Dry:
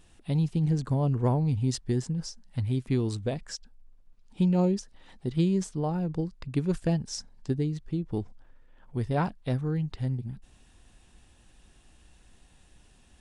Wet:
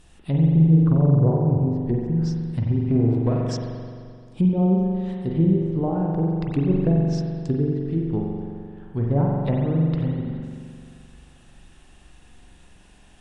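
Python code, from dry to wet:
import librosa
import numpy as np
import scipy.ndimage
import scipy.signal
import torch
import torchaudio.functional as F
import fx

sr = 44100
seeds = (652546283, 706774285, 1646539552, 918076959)

y = fx.lower_of_two(x, sr, delay_ms=0.36, at=(2.8, 3.51))
y = fx.env_lowpass_down(y, sr, base_hz=580.0, full_db=-23.0)
y = fx.rev_spring(y, sr, rt60_s=2.2, pass_ms=(43,), chirp_ms=75, drr_db=-2.0)
y = F.gain(torch.from_numpy(y), 4.0).numpy()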